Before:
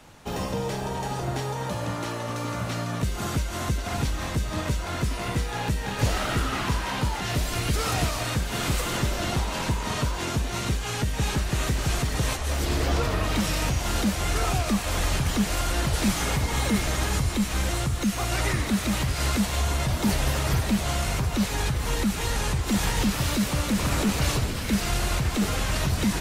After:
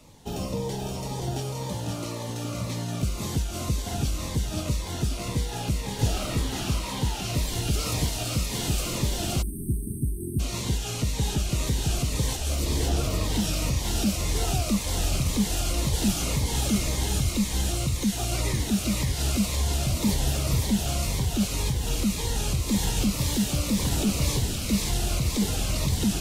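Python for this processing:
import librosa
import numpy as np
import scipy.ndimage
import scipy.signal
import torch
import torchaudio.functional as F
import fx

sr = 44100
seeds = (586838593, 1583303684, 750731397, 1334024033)

y = fx.peak_eq(x, sr, hz=1600.0, db=-9.5, octaves=1.0)
y = fx.echo_wet_highpass(y, sr, ms=524, feedback_pct=50, hz=1600.0, wet_db=-3.0)
y = fx.spec_erase(y, sr, start_s=9.42, length_s=0.98, low_hz=430.0, high_hz=8200.0)
y = fx.notch_cascade(y, sr, direction='falling', hz=1.9)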